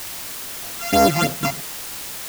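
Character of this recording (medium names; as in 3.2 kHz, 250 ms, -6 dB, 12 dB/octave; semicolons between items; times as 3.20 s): a buzz of ramps at a fixed pitch in blocks of 64 samples; phasing stages 8, 3.2 Hz, lowest notch 440–3400 Hz; a quantiser's noise floor 6-bit, dither triangular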